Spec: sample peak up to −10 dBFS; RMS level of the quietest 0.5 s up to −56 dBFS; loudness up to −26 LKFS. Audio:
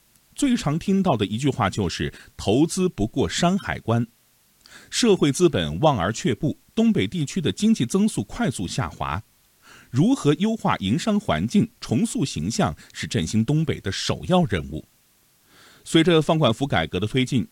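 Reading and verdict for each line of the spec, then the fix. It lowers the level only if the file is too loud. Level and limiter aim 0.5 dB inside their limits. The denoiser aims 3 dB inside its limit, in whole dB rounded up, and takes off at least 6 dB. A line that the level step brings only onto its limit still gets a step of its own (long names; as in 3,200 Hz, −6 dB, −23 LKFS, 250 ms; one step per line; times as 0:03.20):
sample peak −5.5 dBFS: out of spec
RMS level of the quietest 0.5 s −60 dBFS: in spec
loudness −22.5 LKFS: out of spec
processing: level −4 dB
brickwall limiter −10.5 dBFS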